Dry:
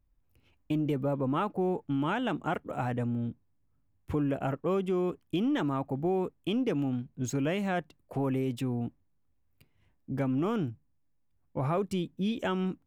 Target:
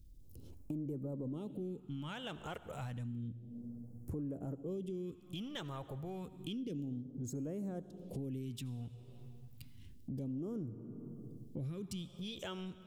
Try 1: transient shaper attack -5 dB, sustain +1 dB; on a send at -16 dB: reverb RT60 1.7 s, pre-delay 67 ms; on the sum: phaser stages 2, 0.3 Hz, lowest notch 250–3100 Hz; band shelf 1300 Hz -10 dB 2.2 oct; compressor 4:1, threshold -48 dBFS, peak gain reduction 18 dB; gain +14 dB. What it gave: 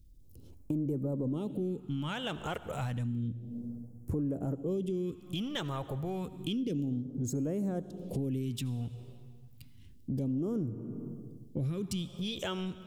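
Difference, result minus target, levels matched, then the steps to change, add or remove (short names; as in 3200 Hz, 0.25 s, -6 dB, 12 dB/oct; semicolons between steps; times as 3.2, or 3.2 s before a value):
compressor: peak gain reduction -8 dB
change: compressor 4:1, threshold -58.5 dBFS, peak gain reduction 26 dB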